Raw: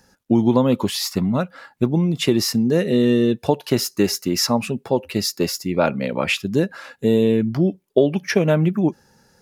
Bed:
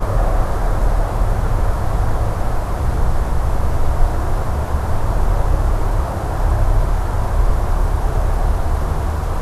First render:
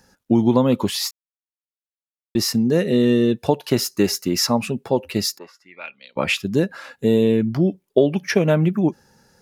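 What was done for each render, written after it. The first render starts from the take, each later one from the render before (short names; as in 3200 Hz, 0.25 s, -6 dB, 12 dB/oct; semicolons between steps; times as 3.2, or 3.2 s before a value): 1.11–2.35 mute; 5.37–6.16 band-pass 860 Hz -> 4700 Hz, Q 4.4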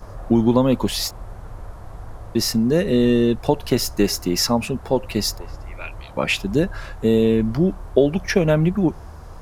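add bed -18.5 dB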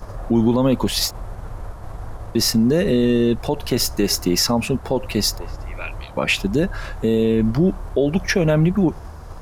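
in parallel at -2.5 dB: level quantiser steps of 12 dB; on the sum: limiter -8 dBFS, peak gain reduction 10 dB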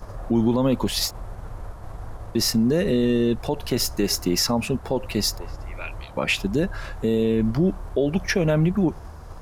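gain -3.5 dB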